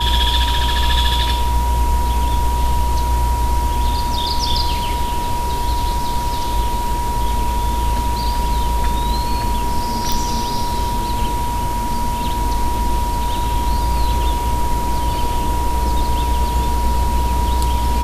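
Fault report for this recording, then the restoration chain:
tone 960 Hz -21 dBFS
10.12 pop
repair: de-click; notch 960 Hz, Q 30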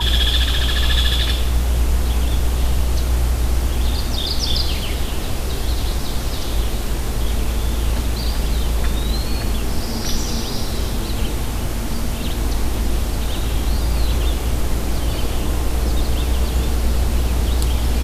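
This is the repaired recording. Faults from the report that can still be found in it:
none

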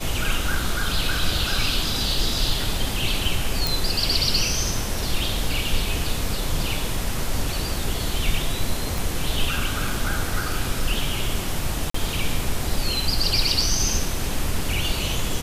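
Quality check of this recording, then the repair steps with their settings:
3.67 pop
8.98 pop
11.9–11.94 gap 44 ms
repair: de-click; interpolate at 11.9, 44 ms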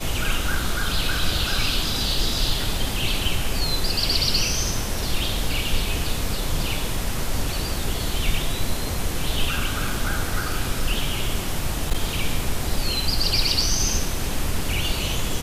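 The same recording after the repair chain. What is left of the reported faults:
8.98 pop

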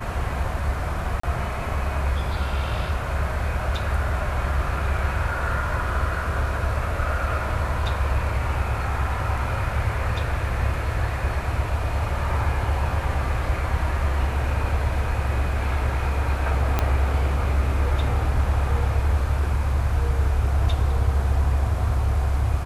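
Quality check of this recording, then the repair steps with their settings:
1.2–1.23 gap 34 ms
16.79 pop -7 dBFS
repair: de-click; interpolate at 1.2, 34 ms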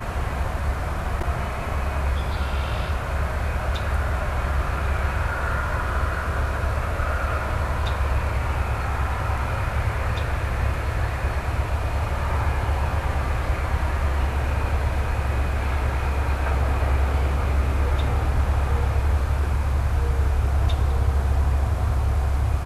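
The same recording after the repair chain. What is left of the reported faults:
16.79 pop

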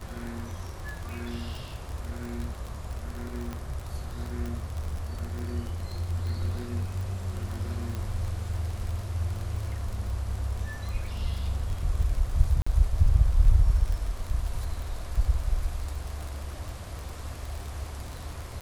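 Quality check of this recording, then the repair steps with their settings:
crackle 27/s -31 dBFS
3.53 pop -22 dBFS
5.39 pop
7.95 pop -21 dBFS
12.62–12.66 gap 45 ms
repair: de-click; interpolate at 12.62, 45 ms

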